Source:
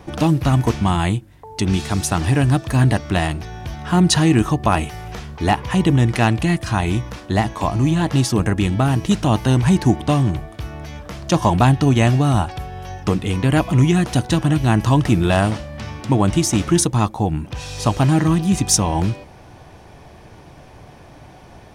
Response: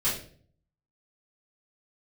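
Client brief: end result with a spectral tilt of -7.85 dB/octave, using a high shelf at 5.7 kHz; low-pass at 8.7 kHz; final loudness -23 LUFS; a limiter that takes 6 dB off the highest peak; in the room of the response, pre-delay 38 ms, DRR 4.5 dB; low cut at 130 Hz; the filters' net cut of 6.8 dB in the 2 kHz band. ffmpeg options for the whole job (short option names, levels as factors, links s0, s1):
-filter_complex "[0:a]highpass=130,lowpass=8700,equalizer=f=2000:t=o:g=-8,highshelf=f=5700:g=-8.5,alimiter=limit=0.398:level=0:latency=1,asplit=2[s0][s1];[1:a]atrim=start_sample=2205,adelay=38[s2];[s1][s2]afir=irnorm=-1:irlink=0,volume=0.211[s3];[s0][s3]amix=inputs=2:normalize=0,volume=0.631"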